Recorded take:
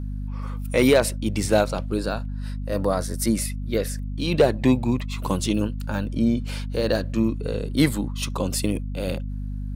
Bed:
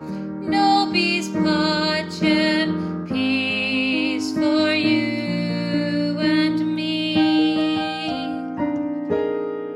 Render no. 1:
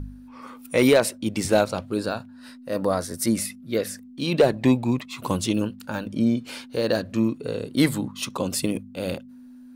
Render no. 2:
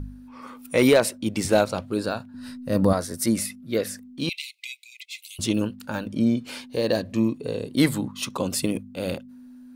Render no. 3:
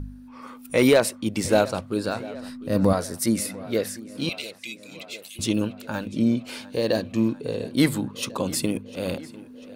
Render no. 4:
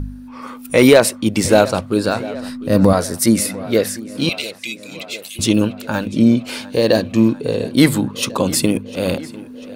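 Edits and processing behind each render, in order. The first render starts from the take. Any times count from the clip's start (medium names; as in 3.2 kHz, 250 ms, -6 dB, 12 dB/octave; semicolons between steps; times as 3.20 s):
de-hum 50 Hz, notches 4
2.34–2.93 s: tone controls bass +14 dB, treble +3 dB; 4.29–5.39 s: brick-wall FIR high-pass 2 kHz; 6.60–7.78 s: peaking EQ 1.4 kHz -14.5 dB 0.2 oct
tape echo 698 ms, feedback 71%, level -17.5 dB, low-pass 5.2 kHz
trim +9 dB; peak limiter -1 dBFS, peak gain reduction 2.5 dB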